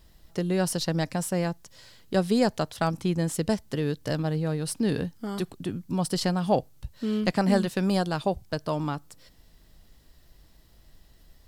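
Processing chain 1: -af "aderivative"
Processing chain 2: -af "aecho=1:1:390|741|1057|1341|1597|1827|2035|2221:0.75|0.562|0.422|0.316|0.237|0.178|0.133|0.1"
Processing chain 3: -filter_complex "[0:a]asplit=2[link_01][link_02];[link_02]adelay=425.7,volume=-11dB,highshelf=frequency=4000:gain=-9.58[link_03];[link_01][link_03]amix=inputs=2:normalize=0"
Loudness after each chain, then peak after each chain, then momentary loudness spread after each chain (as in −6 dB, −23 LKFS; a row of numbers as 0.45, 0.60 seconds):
−39.5, −25.0, −27.5 LKFS; −17.0, −7.0, −9.0 dBFS; 17, 10, 11 LU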